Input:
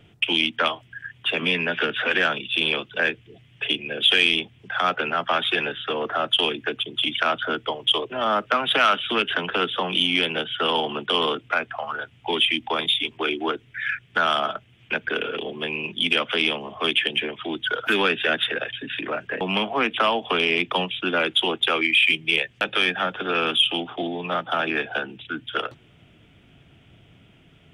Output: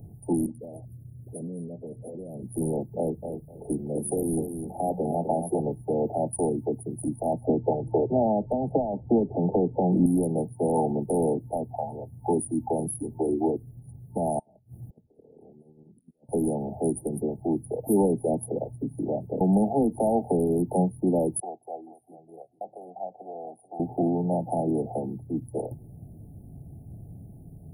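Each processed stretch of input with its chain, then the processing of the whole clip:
0.46–2.43 s: Chebyshev band-stop 570–8500 Hz, order 3 + compression 5:1, threshold -39 dBFS + phase dispersion highs, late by 90 ms, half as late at 810 Hz
2.97–5.60 s: hum notches 60/120/180 Hz + feedback delay 254 ms, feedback 18%, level -7.5 dB
7.49–10.06 s: low-pass 2.7 kHz 24 dB/octave + three bands compressed up and down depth 100%
14.39–16.29 s: compressor with a negative ratio -30 dBFS, ratio -0.5 + inverted gate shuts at -34 dBFS, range -26 dB
21.40–23.80 s: vowel filter a + delay 437 ms -15.5 dB
whole clip: FFT band-reject 890–9100 Hz; tone controls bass +12 dB, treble +14 dB

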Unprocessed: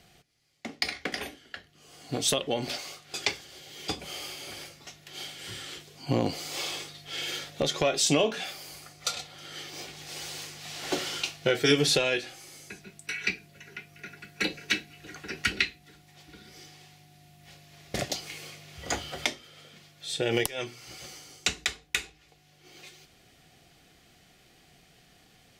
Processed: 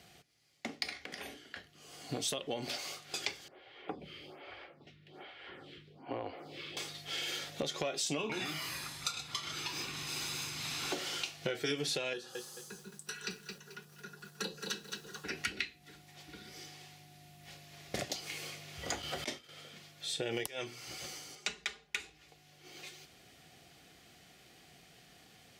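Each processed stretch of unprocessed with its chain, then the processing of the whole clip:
0.97–1.56 s: hum notches 60/120/180/240/300/360/420/480 Hz + compression 12:1, threshold -39 dBFS
3.48–6.77 s: distance through air 430 m + lamp-driven phase shifter 1.2 Hz
8.18–10.92 s: comb 0.8 ms, depth 78% + ever faster or slower copies 113 ms, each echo -3 st, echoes 2, each echo -6 dB
12.13–15.25 s: static phaser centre 440 Hz, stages 8 + bit-crushed delay 218 ms, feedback 35%, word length 9-bit, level -7.5 dB
19.02–19.49 s: high-pass 42 Hz + expander -45 dBFS + compressor with a negative ratio -32 dBFS, ratio -0.5
21.35–22.00 s: low-pass 3.1 kHz 6 dB/octave + bass shelf 390 Hz -6.5 dB + comb 4.9 ms, depth 83%
whole clip: high-pass 52 Hz; bass shelf 180 Hz -3.5 dB; compression 3:1, threshold -36 dBFS

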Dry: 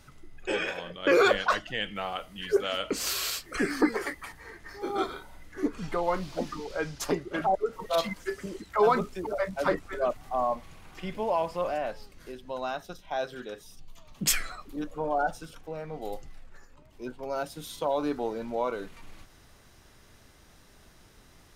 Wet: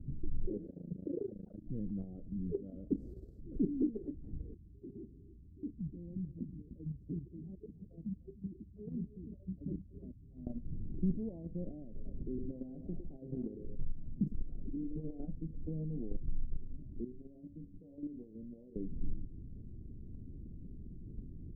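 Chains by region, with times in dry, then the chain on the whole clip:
0.66–1.64 s: high-pass 72 Hz 6 dB/octave + AM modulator 27 Hz, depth 90%
4.54–10.47 s: high-pass 77 Hz + amplifier tone stack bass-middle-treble 10-0-1 + delay 302 ms -14.5 dB
11.84–15.20 s: compression 2.5:1, threshold -43 dBFS + de-hum 304.9 Hz, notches 31 + repeats whose band climbs or falls 106 ms, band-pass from 390 Hz, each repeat 0.7 oct, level -3.5 dB
17.04–18.76 s: low-pass 1.3 kHz + compression 4:1, threshold -42 dBFS + feedback comb 95 Hz, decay 0.44 s, mix 80%
whole clip: compression 2.5:1, threshold -42 dBFS; inverse Chebyshev low-pass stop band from 990 Hz, stop band 60 dB; level held to a coarse grid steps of 9 dB; trim +16.5 dB

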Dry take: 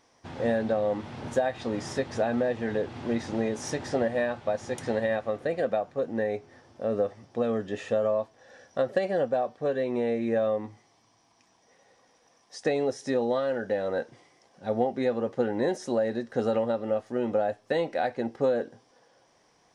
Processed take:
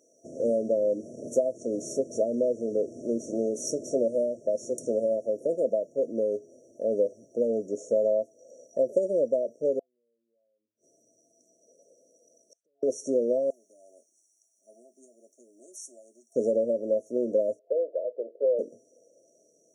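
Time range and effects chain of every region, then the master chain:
9.79–12.83 s: band-stop 6.8 kHz, Q 13 + compression 3:1, threshold -40 dBFS + inverted gate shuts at -40 dBFS, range -40 dB
13.50–16.36 s: differentiator + static phaser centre 500 Hz, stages 6
17.59–18.59 s: Butterworth band-pass 540 Hz, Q 2 + distance through air 390 m
whole clip: FFT band-reject 680–5500 Hz; high-pass 340 Hz 12 dB/octave; dynamic bell 970 Hz, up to -8 dB, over -45 dBFS, Q 1.3; trim +5 dB

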